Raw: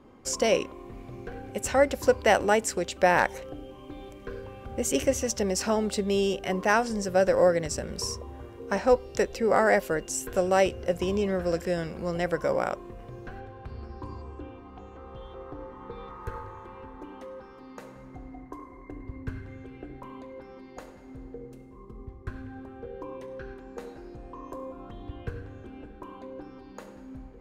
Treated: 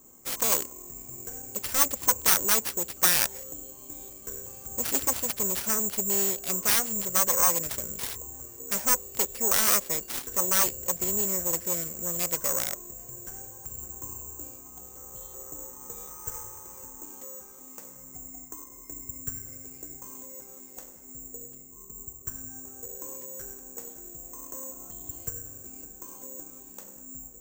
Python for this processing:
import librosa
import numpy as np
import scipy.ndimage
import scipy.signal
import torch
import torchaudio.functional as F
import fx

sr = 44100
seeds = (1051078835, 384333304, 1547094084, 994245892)

y = fx.self_delay(x, sr, depth_ms=0.83)
y = (np.kron(y[::6], np.eye(6)[0]) * 6)[:len(y)]
y = y * librosa.db_to_amplitude(-8.0)